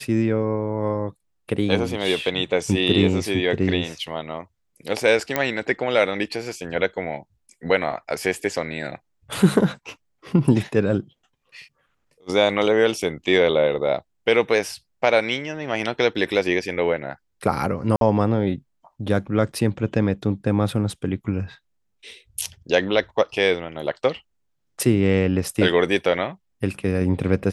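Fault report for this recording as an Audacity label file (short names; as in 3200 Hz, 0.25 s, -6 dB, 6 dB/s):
5.360000	5.360000	pop -5 dBFS
17.960000	18.010000	gap 52 ms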